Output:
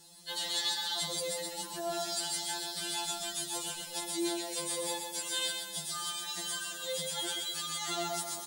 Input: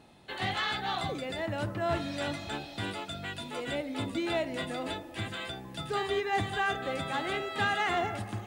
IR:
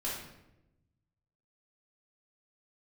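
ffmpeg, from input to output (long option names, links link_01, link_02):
-filter_complex "[0:a]asettb=1/sr,asplit=3[link_01][link_02][link_03];[link_01]atrim=end=2.874[link_04];[link_02]atrim=start=2.87:end=3.85,asetpts=PTS-STARTPTS,afade=type=in:duration=0.004:curve=qsin,afade=type=out:start_time=0.976:duration=0.004:curve=qsin,asubboost=boost=9:cutoff=220[link_05];[link_03]atrim=start=3.846[link_06];[link_04][link_05]acrossfade=duration=0.004:curve1=hsin:curve2=qsin[link_07];[link_07][link_06]acrossfade=duration=0.004:curve1=qsin:curve2=hsin,alimiter=level_in=3dB:limit=-24dB:level=0:latency=1:release=26,volume=-3dB,aexciter=amount=10.4:drive=6.7:freq=3700,asplit=2[link_08][link_09];[link_09]aecho=0:1:128|256|384|512|640:0.562|0.231|0.0945|0.0388|0.0159[link_10];[link_08][link_10]amix=inputs=2:normalize=0,afftfilt=real='re*2.83*eq(mod(b,8),0)':imag='im*2.83*eq(mod(b,8),0)':win_size=2048:overlap=0.75,volume=-4.5dB"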